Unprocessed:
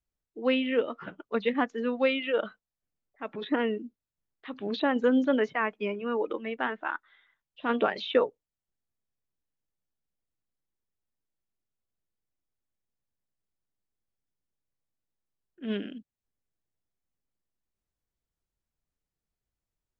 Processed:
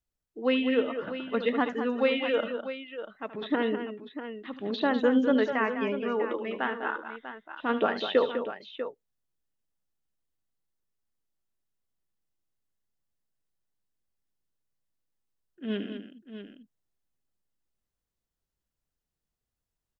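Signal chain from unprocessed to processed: band-stop 2.3 kHz, Q 15; multi-tap echo 74/201/644 ms -13.5/-9/-11 dB

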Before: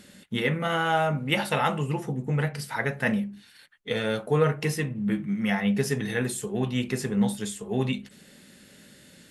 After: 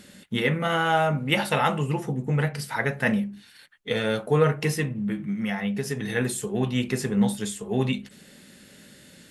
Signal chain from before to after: 4.89–6.16 s: compression 4:1, threshold -27 dBFS, peak gain reduction 7 dB; trim +2 dB

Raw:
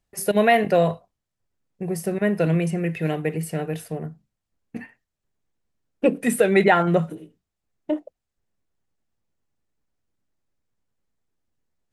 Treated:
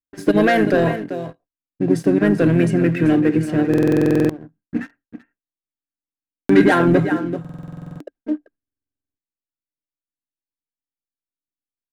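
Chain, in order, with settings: in parallel at 0 dB: peak limiter -16 dBFS, peak gain reduction 10.5 dB; on the sum: level-controlled noise filter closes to 2.5 kHz, open at -10.5 dBFS; on a send: delay 387 ms -13 dB; on the sum: gate with hold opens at -42 dBFS; waveshaping leveller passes 2; harmony voices -5 st -8 dB; small resonant body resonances 290/1600 Hz, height 15 dB, ringing for 50 ms; buffer glitch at 3.69/5.89/7.40/8.58 s, samples 2048, times 12; trim -9.5 dB

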